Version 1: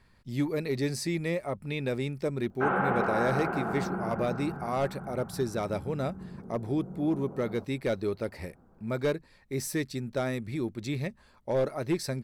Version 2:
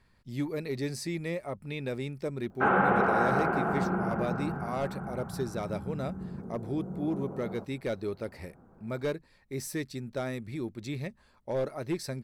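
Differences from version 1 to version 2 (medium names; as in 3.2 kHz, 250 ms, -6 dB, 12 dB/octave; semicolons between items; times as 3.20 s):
speech -3.5 dB; background +3.5 dB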